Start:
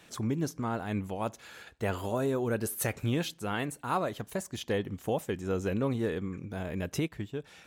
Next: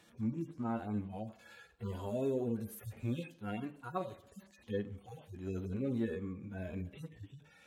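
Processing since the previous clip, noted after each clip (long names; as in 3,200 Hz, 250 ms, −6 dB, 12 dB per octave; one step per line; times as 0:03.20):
harmonic-percussive split with one part muted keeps harmonic
on a send at −13.5 dB: convolution reverb RT60 0.75 s, pre-delay 3 ms
on the sum: level −4.5 dB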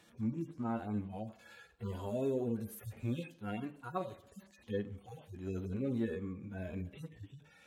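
no processing that can be heard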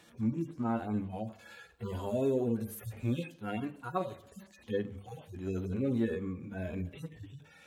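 mains-hum notches 50/100/150/200 Hz
level +4.5 dB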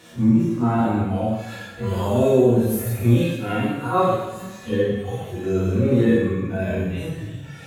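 every bin's largest magnitude spread in time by 60 ms
coupled-rooms reverb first 0.92 s, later 2.8 s, DRR −6 dB
level +4.5 dB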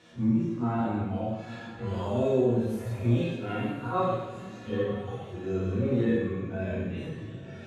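low-pass filter 5,500 Hz 12 dB per octave
feedback delay with all-pass diffusion 931 ms, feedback 43%, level −15.5 dB
level −8.5 dB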